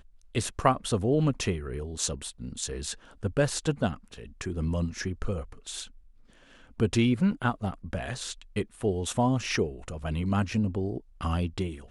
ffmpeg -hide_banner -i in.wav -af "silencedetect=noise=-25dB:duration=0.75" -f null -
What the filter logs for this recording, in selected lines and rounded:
silence_start: 5.80
silence_end: 6.80 | silence_duration: 1.00